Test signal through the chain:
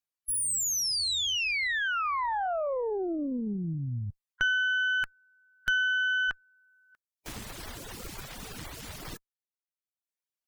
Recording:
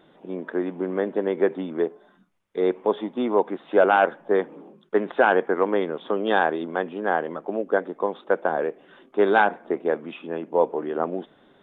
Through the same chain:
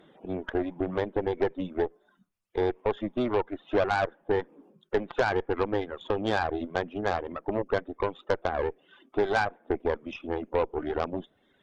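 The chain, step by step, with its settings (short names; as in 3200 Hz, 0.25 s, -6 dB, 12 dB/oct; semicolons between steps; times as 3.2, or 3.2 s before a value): bin magnitudes rounded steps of 15 dB; reverb removal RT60 1 s; compressor 2.5:1, threshold -25 dBFS; added harmonics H 8 -20 dB, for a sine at -11.5 dBFS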